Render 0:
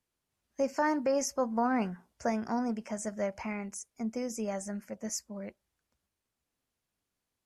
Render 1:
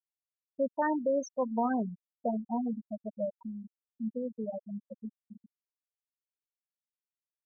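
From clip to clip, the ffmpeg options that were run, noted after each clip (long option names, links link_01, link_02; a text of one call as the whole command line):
ffmpeg -i in.wav -af "aecho=1:1:72|144:0.106|0.0254,afftfilt=real='re*gte(hypot(re,im),0.112)':imag='im*gte(hypot(re,im),0.112)':win_size=1024:overlap=0.75" out.wav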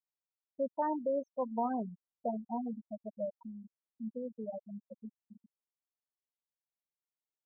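ffmpeg -i in.wav -af "lowpass=frequency=960:width_type=q:width=1.5,volume=-6dB" out.wav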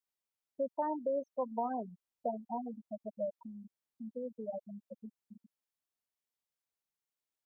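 ffmpeg -i in.wav -filter_complex "[0:a]acrossover=split=350|860[link_01][link_02][link_03];[link_01]acompressor=threshold=-48dB:ratio=4[link_04];[link_02]acompressor=threshold=-34dB:ratio=4[link_05];[link_03]acompressor=threshold=-43dB:ratio=4[link_06];[link_04][link_05][link_06]amix=inputs=3:normalize=0,volume=1.5dB" out.wav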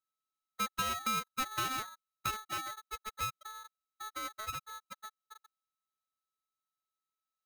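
ffmpeg -i in.wav -af "aeval=exprs='abs(val(0))':channel_layout=same,aeval=exprs='val(0)*sgn(sin(2*PI*1300*n/s))':channel_layout=same" out.wav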